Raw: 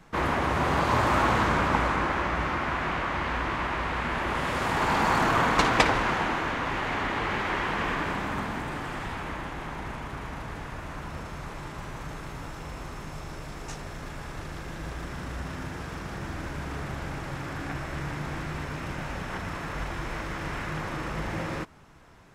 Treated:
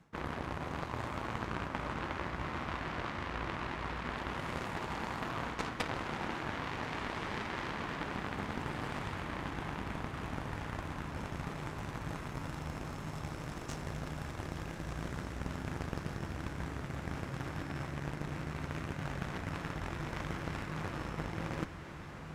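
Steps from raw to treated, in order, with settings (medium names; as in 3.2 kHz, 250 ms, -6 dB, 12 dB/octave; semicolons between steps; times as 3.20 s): high-pass 66 Hz 12 dB/octave; bass shelf 280 Hz +7.5 dB; reverse; compression 16:1, threshold -32 dBFS, peak gain reduction 19 dB; reverse; Chebyshev shaper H 3 -15 dB, 4 -12 dB, 6 -20 dB, 7 -30 dB, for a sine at -20 dBFS; echo that smears into a reverb 1460 ms, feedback 47%, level -8 dB; trim +3.5 dB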